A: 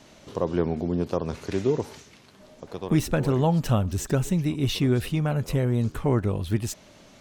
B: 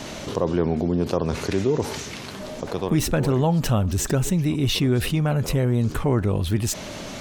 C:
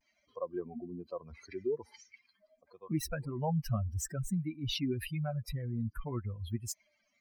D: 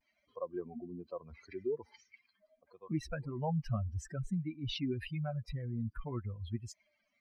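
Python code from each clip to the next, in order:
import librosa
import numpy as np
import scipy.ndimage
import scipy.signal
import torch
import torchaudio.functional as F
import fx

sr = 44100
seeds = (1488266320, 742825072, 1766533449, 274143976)

y1 = fx.env_flatten(x, sr, amount_pct=50)
y2 = fx.bin_expand(y1, sr, power=3.0)
y2 = fx.vibrato(y2, sr, rate_hz=0.49, depth_cents=38.0)
y2 = y2 * librosa.db_to_amplitude(-7.5)
y3 = scipy.signal.sosfilt(scipy.signal.butter(2, 4100.0, 'lowpass', fs=sr, output='sos'), y2)
y3 = y3 * librosa.db_to_amplitude(-2.0)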